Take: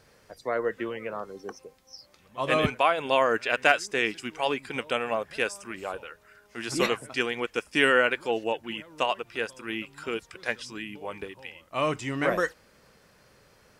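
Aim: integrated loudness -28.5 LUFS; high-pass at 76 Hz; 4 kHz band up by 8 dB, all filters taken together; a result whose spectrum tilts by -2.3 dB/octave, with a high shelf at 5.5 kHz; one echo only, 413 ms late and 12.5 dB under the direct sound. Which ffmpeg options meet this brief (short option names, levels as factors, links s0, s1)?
-af "highpass=76,equalizer=f=4000:t=o:g=9,highshelf=f=5500:g=8,aecho=1:1:413:0.237,volume=0.668"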